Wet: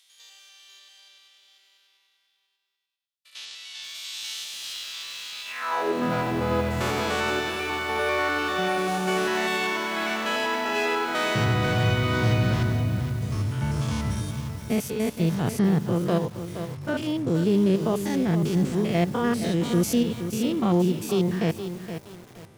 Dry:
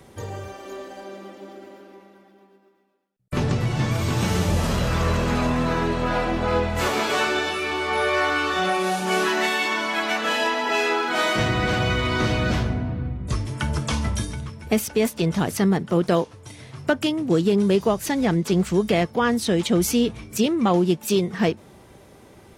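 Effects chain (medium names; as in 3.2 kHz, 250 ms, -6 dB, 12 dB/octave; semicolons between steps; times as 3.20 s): spectrogram pixelated in time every 100 ms; high-pass sweep 3.5 kHz -> 110 Hz, 5.44–6.19 s; bit-crushed delay 470 ms, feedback 35%, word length 6-bit, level -9 dB; trim -3 dB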